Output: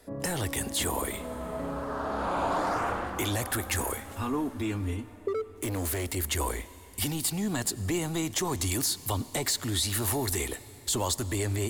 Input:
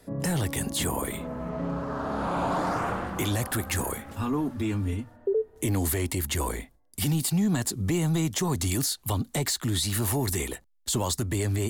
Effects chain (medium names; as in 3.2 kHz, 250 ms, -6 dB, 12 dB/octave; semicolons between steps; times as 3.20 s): peaking EQ 160 Hz -10 dB 1 oct; 5.28–6.16 s: overload inside the chain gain 28 dB; on a send: reverberation RT60 4.2 s, pre-delay 79 ms, DRR 17 dB